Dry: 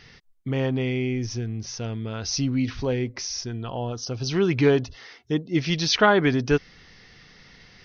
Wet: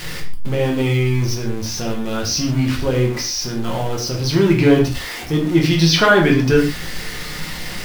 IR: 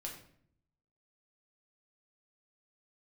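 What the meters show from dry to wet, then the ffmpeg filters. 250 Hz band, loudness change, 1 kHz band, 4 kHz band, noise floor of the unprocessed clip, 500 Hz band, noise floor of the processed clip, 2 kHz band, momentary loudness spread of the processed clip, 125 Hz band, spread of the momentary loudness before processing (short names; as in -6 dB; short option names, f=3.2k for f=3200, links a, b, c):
+8.0 dB, +6.5 dB, +5.0 dB, +7.5 dB, -54 dBFS, +6.0 dB, -29 dBFS, +7.5 dB, 14 LU, +9.0 dB, 12 LU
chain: -filter_complex "[0:a]aeval=exprs='val(0)+0.5*0.0316*sgn(val(0))':c=same[a];[1:a]atrim=start_sample=2205,afade=t=out:st=0.2:d=0.01,atrim=end_sample=9261[b];[a][b]afir=irnorm=-1:irlink=0,volume=7.5dB"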